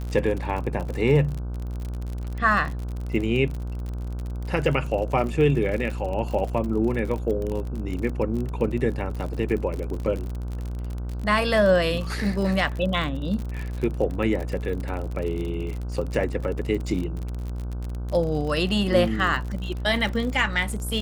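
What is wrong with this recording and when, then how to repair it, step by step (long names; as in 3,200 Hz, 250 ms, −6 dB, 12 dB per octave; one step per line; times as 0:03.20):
mains buzz 60 Hz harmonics 26 −30 dBFS
surface crackle 48 per second −29 dBFS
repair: click removal
hum removal 60 Hz, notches 26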